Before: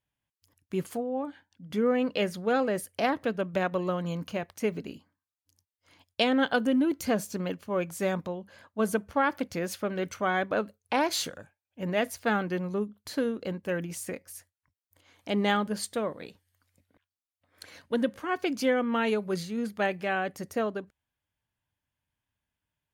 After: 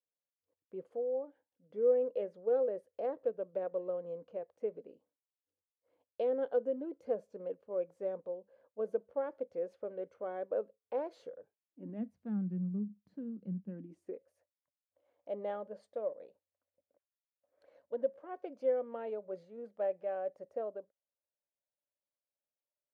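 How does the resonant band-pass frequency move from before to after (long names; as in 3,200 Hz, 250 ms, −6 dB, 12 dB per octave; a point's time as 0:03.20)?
resonant band-pass, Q 6.4
0:11.37 500 Hz
0:12.14 190 Hz
0:13.65 190 Hz
0:14.31 560 Hz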